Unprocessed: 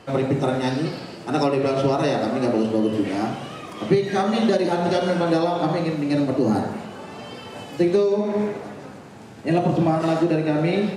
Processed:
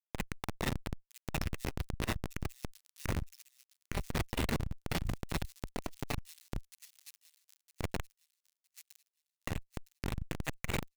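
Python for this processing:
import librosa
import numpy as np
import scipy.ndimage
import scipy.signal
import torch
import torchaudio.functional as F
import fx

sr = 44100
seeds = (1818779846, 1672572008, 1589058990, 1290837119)

p1 = scipy.signal.sosfilt(scipy.signal.butter(12, 1800.0, 'highpass', fs=sr, output='sos'), x)
p2 = fx.dynamic_eq(p1, sr, hz=4300.0, q=0.87, threshold_db=-49.0, ratio=4.0, max_db=-5)
p3 = fx.rider(p2, sr, range_db=3, speed_s=0.5)
p4 = p2 + (p3 * 10.0 ** (1.0 / 20.0))
p5 = fx.schmitt(p4, sr, flips_db=-27.0)
p6 = p5 + fx.echo_wet_highpass(p5, sr, ms=961, feedback_pct=32, hz=5500.0, wet_db=-9, dry=0)
p7 = fx.transformer_sat(p6, sr, knee_hz=130.0)
y = p7 * 10.0 ** (8.5 / 20.0)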